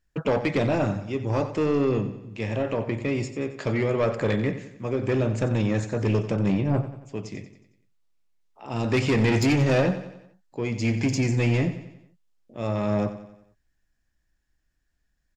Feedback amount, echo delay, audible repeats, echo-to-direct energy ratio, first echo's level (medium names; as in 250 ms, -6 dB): 50%, 91 ms, 4, -11.5 dB, -12.5 dB